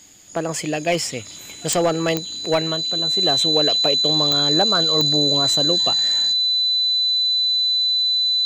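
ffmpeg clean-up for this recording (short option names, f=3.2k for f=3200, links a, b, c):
-af "adeclick=t=4,bandreject=f=4k:w=30"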